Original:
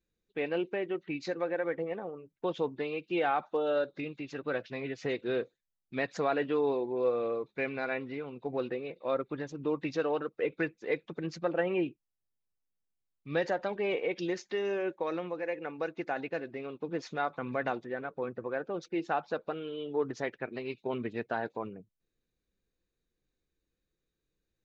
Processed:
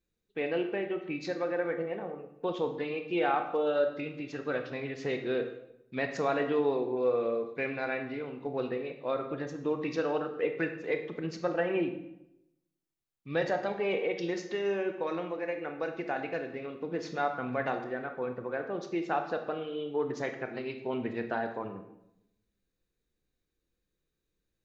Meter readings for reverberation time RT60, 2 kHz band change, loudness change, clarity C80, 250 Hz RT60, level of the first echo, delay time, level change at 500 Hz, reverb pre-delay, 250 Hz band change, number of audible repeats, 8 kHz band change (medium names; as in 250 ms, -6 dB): 0.80 s, +1.0 dB, +1.0 dB, 11.0 dB, 0.95 s, no echo, no echo, +1.0 dB, 22 ms, +1.0 dB, no echo, no reading